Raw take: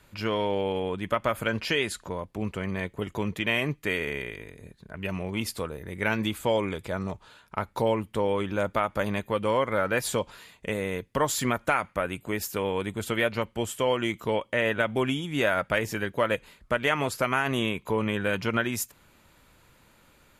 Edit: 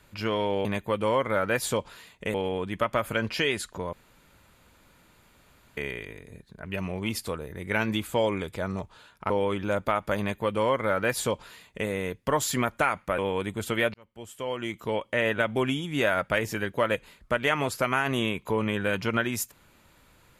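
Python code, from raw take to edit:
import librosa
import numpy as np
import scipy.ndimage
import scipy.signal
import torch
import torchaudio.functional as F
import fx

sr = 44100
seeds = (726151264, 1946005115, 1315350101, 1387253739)

y = fx.edit(x, sr, fx.room_tone_fill(start_s=2.24, length_s=1.84),
    fx.cut(start_s=7.61, length_s=0.57),
    fx.duplicate(start_s=9.07, length_s=1.69, to_s=0.65),
    fx.cut(start_s=12.06, length_s=0.52),
    fx.fade_in_span(start_s=13.34, length_s=1.24), tone=tone)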